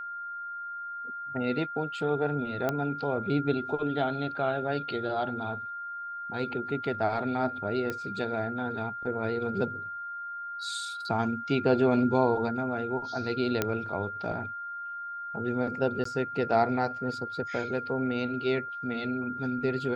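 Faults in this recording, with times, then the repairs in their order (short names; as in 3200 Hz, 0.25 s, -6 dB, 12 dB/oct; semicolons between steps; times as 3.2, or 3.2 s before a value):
tone 1400 Hz -35 dBFS
2.69 pop -15 dBFS
7.9 pop -19 dBFS
13.62 pop -11 dBFS
16.04–16.05 gap 14 ms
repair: de-click; notch 1400 Hz, Q 30; interpolate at 16.04, 14 ms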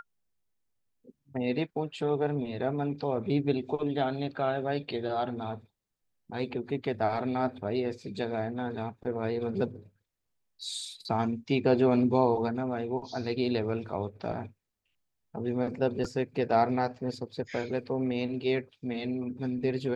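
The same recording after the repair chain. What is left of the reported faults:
none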